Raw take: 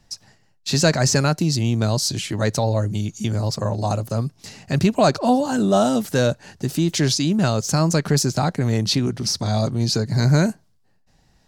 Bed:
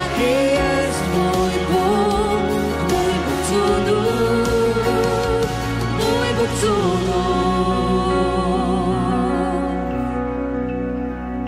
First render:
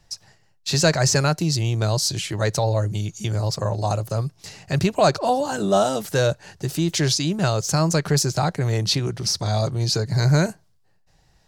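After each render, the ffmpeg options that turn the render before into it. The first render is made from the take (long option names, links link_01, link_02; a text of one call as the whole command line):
ffmpeg -i in.wav -af "equalizer=frequency=240:width_type=o:width=0.34:gain=-15" out.wav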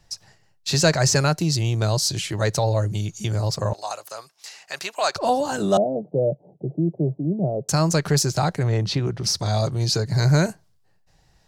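ffmpeg -i in.wav -filter_complex "[0:a]asettb=1/sr,asplit=3[link_01][link_02][link_03];[link_01]atrim=end=3.734[link_04];[link_02]atrim=start=3.73:end=5.16,asetpts=PTS-STARTPTS,afade=type=in:duration=0.004:curve=qsin,afade=type=out:start_time=1.426:duration=0.004:curve=qsin,highpass=910[link_05];[link_03]atrim=start=5.156[link_06];[link_04][link_05]acrossfade=duration=0.004:curve1=hsin:curve2=qsin[link_07];[link_07][link_06]acrossfade=duration=0.004:curve1=qsin:curve2=hsin,asettb=1/sr,asplit=3[link_08][link_09][link_10];[link_08]atrim=end=5.774[link_11];[link_09]atrim=start=5.77:end=7.69,asetpts=PTS-STARTPTS,afade=type=in:duration=0.004:curve=qsin,afade=type=out:start_time=1.916:duration=0.004:curve=qsin,asuperpass=centerf=300:order=12:qfactor=0.53[link_12];[link_10]atrim=start=7.686[link_13];[link_11][link_12]acrossfade=duration=0.004:curve1=hsin:curve2=qsin[link_14];[link_14][link_13]acrossfade=duration=0.004:curve1=qsin:curve2=hsin,asettb=1/sr,asplit=3[link_15][link_16][link_17];[link_15]atrim=end=8.634[link_18];[link_16]atrim=start=8.63:end=9.24,asetpts=PTS-STARTPTS,afade=type=in:duration=0.004:curve=qsin,afade=type=out:start_time=0.606:duration=0.004:curve=qsin,aemphasis=mode=reproduction:type=75fm[link_19];[link_17]atrim=start=9.236[link_20];[link_18][link_19]acrossfade=duration=0.004:curve1=hsin:curve2=qsin[link_21];[link_21][link_20]acrossfade=duration=0.004:curve1=qsin:curve2=hsin" out.wav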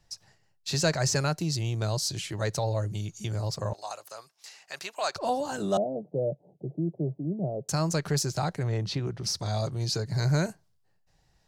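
ffmpeg -i in.wav -af "volume=-7.5dB" out.wav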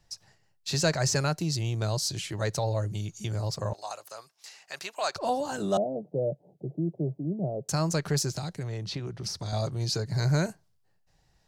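ffmpeg -i in.wav -filter_complex "[0:a]asettb=1/sr,asplit=3[link_01][link_02][link_03];[link_01]atrim=end=8.354[link_04];[link_02]atrim=start=8.35:end=9.53,asetpts=PTS-STARTPTS,afade=type=in:duration=0.004:curve=qsin,afade=type=out:start_time=1.176:duration=0.004:curve=qsin,acrossover=split=390|2700[link_05][link_06][link_07];[link_05]acompressor=threshold=-33dB:ratio=4[link_08];[link_06]acompressor=threshold=-43dB:ratio=4[link_09];[link_07]acompressor=threshold=-34dB:ratio=4[link_10];[link_08][link_09][link_10]amix=inputs=3:normalize=0[link_11];[link_03]atrim=start=9.526[link_12];[link_04][link_11]acrossfade=duration=0.004:curve1=hsin:curve2=qsin[link_13];[link_13][link_12]acrossfade=duration=0.004:curve1=qsin:curve2=hsin" out.wav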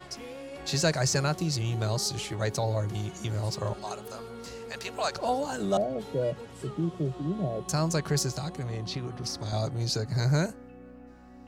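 ffmpeg -i in.wav -i bed.wav -filter_complex "[1:a]volume=-25dB[link_01];[0:a][link_01]amix=inputs=2:normalize=0" out.wav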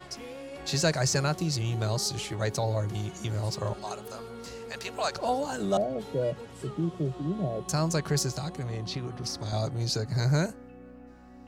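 ffmpeg -i in.wav -af anull out.wav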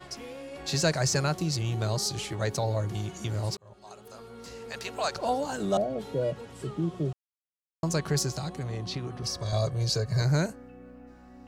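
ffmpeg -i in.wav -filter_complex "[0:a]asettb=1/sr,asplit=3[link_01][link_02][link_03];[link_01]atrim=end=9.224[link_04];[link_02]atrim=start=9.22:end=10.22,asetpts=PTS-STARTPTS,afade=type=in:duration=0.004:curve=qsin,afade=type=out:start_time=0.996:duration=0.004:curve=qsin,aecho=1:1:1.8:0.65,atrim=end_sample=44100[link_05];[link_03]atrim=start=10.216[link_06];[link_04][link_05]acrossfade=duration=0.004:curve1=hsin:curve2=qsin[link_07];[link_07][link_06]acrossfade=duration=0.004:curve1=qsin:curve2=hsin,asplit=4[link_08][link_09][link_10][link_11];[link_08]atrim=end=3.57,asetpts=PTS-STARTPTS,afade=type=out:start_time=3.566:duration=0.004:curve=hsin[link_12];[link_09]atrim=start=3.57:end=7.13,asetpts=PTS-STARTPTS,afade=type=in:duration=1.18,afade=type=out:start_time=3.556:duration=0.004:curve=hsin[link_13];[link_10]atrim=start=7.13:end=7.83,asetpts=PTS-STARTPTS,volume=0[link_14];[link_11]atrim=start=7.83,asetpts=PTS-STARTPTS,afade=type=in:duration=0.004:curve=hsin[link_15];[link_12][link_13][link_14][link_15]concat=n=4:v=0:a=1" out.wav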